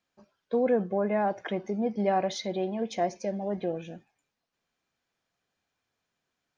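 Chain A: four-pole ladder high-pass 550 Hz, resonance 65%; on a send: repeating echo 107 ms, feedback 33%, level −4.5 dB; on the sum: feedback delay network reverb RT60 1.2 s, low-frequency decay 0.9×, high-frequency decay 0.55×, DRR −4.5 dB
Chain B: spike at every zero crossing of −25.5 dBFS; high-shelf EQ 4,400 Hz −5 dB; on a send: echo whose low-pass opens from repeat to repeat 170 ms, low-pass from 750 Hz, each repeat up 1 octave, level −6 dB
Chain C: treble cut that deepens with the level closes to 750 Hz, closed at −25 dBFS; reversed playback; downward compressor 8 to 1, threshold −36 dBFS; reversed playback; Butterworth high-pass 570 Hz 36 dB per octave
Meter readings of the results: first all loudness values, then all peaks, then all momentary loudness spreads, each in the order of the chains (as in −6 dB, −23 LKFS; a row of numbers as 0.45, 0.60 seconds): −28.5, −30.0, −47.0 LKFS; −13.0, −12.0, −31.5 dBFS; 10, 11, 10 LU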